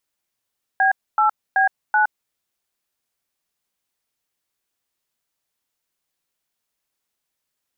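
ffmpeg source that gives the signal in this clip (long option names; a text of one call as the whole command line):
ffmpeg -f lavfi -i "aevalsrc='0.158*clip(min(mod(t,0.38),0.116-mod(t,0.38))/0.002,0,1)*(eq(floor(t/0.38),0)*(sin(2*PI*770*mod(t,0.38))+sin(2*PI*1633*mod(t,0.38)))+eq(floor(t/0.38),1)*(sin(2*PI*852*mod(t,0.38))+sin(2*PI*1336*mod(t,0.38)))+eq(floor(t/0.38),2)*(sin(2*PI*770*mod(t,0.38))+sin(2*PI*1633*mod(t,0.38)))+eq(floor(t/0.38),3)*(sin(2*PI*852*mod(t,0.38))+sin(2*PI*1477*mod(t,0.38))))':duration=1.52:sample_rate=44100" out.wav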